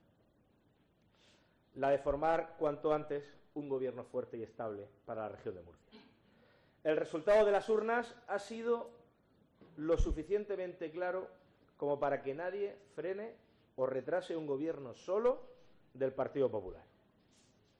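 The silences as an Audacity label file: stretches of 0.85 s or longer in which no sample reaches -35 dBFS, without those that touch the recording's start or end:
5.500000	6.860000	silence
8.820000	9.820000	silence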